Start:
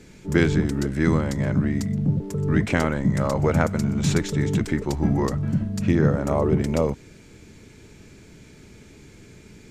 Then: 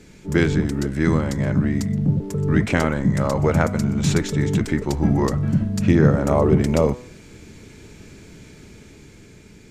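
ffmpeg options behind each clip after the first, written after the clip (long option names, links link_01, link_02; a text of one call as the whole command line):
ffmpeg -i in.wav -af "bandreject=frequency=123.4:width_type=h:width=4,bandreject=frequency=246.8:width_type=h:width=4,bandreject=frequency=370.2:width_type=h:width=4,bandreject=frequency=493.6:width_type=h:width=4,bandreject=frequency=617:width_type=h:width=4,bandreject=frequency=740.4:width_type=h:width=4,bandreject=frequency=863.8:width_type=h:width=4,bandreject=frequency=987.2:width_type=h:width=4,bandreject=frequency=1110.6:width_type=h:width=4,bandreject=frequency=1234:width_type=h:width=4,bandreject=frequency=1357.4:width_type=h:width=4,bandreject=frequency=1480.8:width_type=h:width=4,bandreject=frequency=1604.2:width_type=h:width=4,bandreject=frequency=1727.6:width_type=h:width=4,bandreject=frequency=1851:width_type=h:width=4,bandreject=frequency=1974.4:width_type=h:width=4,bandreject=frequency=2097.8:width_type=h:width=4,bandreject=frequency=2221.2:width_type=h:width=4,bandreject=frequency=2344.6:width_type=h:width=4,bandreject=frequency=2468:width_type=h:width=4,dynaudnorm=framelen=300:gausssize=9:maxgain=4dB,volume=1dB" out.wav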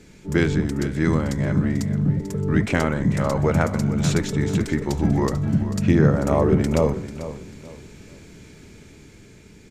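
ffmpeg -i in.wav -af "aecho=1:1:442|884|1326:0.224|0.0672|0.0201,volume=-1.5dB" out.wav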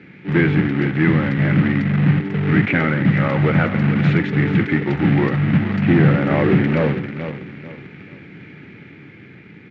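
ffmpeg -i in.wav -af "acrusher=bits=2:mode=log:mix=0:aa=0.000001,asoftclip=type=tanh:threshold=-12.5dB,highpass=frequency=120:width=0.5412,highpass=frequency=120:width=1.3066,equalizer=frequency=220:width_type=q:width=4:gain=-4,equalizer=frequency=430:width_type=q:width=4:gain=-7,equalizer=frequency=630:width_type=q:width=4:gain=-8,equalizer=frequency=1000:width_type=q:width=4:gain=-9,equalizer=frequency=2000:width_type=q:width=4:gain=5,lowpass=frequency=2600:width=0.5412,lowpass=frequency=2600:width=1.3066,volume=8.5dB" out.wav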